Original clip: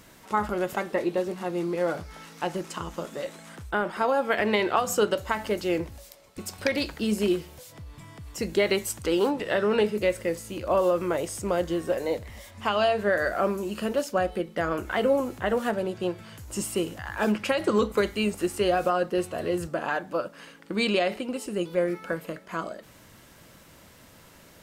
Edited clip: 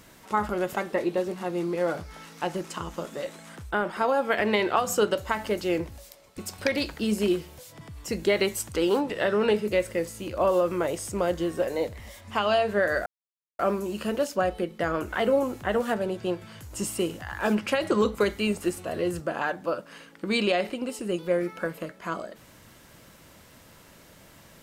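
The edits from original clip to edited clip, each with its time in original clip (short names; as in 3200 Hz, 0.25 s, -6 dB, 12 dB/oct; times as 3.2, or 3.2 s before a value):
7.81–8.11 cut
13.36 insert silence 0.53 s
18.55–19.25 cut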